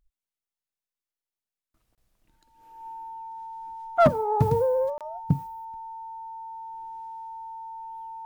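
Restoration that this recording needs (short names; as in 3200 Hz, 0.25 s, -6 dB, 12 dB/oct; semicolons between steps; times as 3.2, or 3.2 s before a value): clip repair -11 dBFS; notch 900 Hz, Q 30; interpolate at 1.95/4.98, 27 ms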